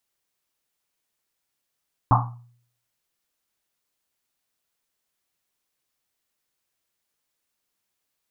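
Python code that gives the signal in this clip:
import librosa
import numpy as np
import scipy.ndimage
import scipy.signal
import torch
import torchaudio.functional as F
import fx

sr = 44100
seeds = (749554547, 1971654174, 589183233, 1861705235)

y = fx.risset_drum(sr, seeds[0], length_s=1.1, hz=120.0, decay_s=0.61, noise_hz=970.0, noise_width_hz=490.0, noise_pct=50)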